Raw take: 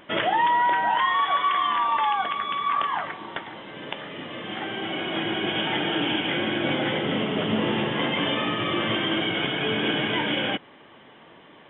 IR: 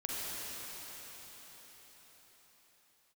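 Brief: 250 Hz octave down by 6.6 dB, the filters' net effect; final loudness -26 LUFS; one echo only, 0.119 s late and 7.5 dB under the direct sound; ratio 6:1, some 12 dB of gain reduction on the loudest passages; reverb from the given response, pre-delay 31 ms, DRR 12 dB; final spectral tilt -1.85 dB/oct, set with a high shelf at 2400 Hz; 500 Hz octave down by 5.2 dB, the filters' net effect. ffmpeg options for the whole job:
-filter_complex "[0:a]equalizer=f=250:t=o:g=-7.5,equalizer=f=500:t=o:g=-4,highshelf=f=2.4k:g=-6.5,acompressor=threshold=-34dB:ratio=6,aecho=1:1:119:0.422,asplit=2[a][b];[1:a]atrim=start_sample=2205,adelay=31[c];[b][c]afir=irnorm=-1:irlink=0,volume=-17dB[d];[a][d]amix=inputs=2:normalize=0,volume=9.5dB"

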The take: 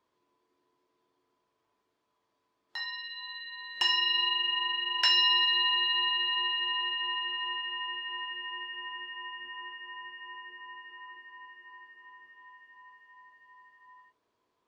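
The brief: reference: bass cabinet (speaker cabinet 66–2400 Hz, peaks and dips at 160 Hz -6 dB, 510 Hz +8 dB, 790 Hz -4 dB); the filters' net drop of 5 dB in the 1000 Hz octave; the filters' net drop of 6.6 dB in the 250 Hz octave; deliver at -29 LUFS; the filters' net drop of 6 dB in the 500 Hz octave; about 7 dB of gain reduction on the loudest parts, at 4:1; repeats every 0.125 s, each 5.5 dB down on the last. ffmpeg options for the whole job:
-af "equalizer=f=250:t=o:g=-8.5,equalizer=f=500:t=o:g=-5.5,equalizer=f=1k:t=o:g=-3,acompressor=threshold=-30dB:ratio=4,highpass=f=66:w=0.5412,highpass=f=66:w=1.3066,equalizer=f=160:t=q:w=4:g=-6,equalizer=f=510:t=q:w=4:g=8,equalizer=f=790:t=q:w=4:g=-4,lowpass=f=2.4k:w=0.5412,lowpass=f=2.4k:w=1.3066,aecho=1:1:125|250|375|500|625|750|875:0.531|0.281|0.149|0.079|0.0419|0.0222|0.0118,volume=10.5dB"

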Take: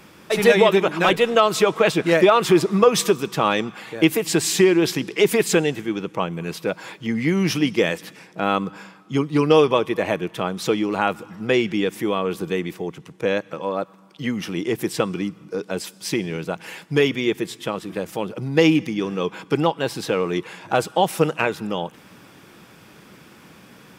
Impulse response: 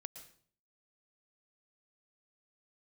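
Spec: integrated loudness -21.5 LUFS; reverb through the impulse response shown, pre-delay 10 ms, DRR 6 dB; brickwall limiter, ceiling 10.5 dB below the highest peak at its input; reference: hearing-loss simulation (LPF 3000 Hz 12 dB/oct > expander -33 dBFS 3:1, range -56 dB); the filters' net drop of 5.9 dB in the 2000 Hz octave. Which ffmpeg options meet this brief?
-filter_complex "[0:a]equalizer=f=2k:t=o:g=-6.5,alimiter=limit=-13.5dB:level=0:latency=1,asplit=2[a][b];[1:a]atrim=start_sample=2205,adelay=10[c];[b][c]afir=irnorm=-1:irlink=0,volume=-1.5dB[d];[a][d]amix=inputs=2:normalize=0,lowpass=3k,agate=range=-56dB:threshold=-33dB:ratio=3,volume=3dB"

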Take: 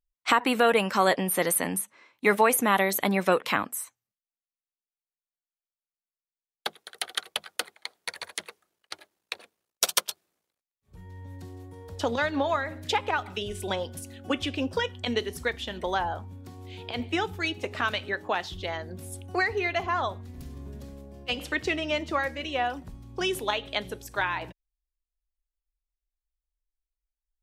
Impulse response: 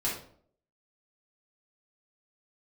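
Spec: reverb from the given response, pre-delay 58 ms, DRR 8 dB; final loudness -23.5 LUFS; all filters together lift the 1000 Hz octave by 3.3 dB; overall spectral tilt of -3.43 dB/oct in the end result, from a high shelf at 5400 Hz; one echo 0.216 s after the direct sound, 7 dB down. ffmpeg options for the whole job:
-filter_complex "[0:a]equalizer=f=1k:t=o:g=4,highshelf=f=5.4k:g=4,aecho=1:1:216:0.447,asplit=2[a][b];[1:a]atrim=start_sample=2205,adelay=58[c];[b][c]afir=irnorm=-1:irlink=0,volume=-14.5dB[d];[a][d]amix=inputs=2:normalize=0,volume=1.5dB"

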